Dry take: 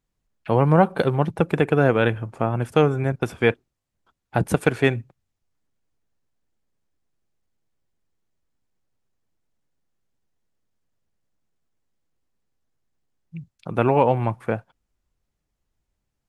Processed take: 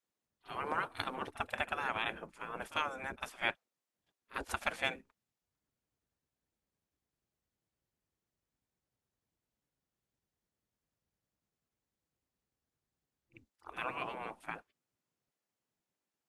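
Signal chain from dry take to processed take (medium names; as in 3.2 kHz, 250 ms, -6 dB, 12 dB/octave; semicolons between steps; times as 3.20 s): spectral gate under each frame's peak -15 dB weak; pre-echo 47 ms -18 dB; trim -6 dB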